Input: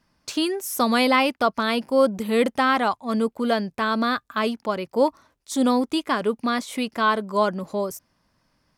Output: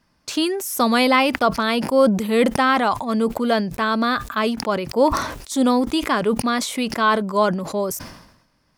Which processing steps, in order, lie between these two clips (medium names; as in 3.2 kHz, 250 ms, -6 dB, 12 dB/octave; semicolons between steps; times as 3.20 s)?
decay stretcher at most 66 dB/s; trim +2.5 dB